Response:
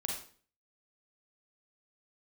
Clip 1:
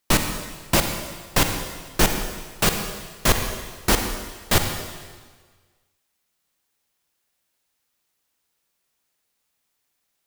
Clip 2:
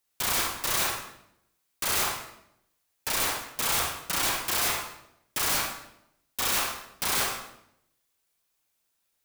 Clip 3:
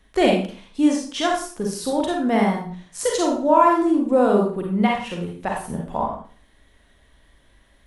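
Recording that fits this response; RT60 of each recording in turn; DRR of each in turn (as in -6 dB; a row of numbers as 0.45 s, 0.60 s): 3; 1.5 s, 0.75 s, 0.45 s; 5.0 dB, 0.5 dB, -0.5 dB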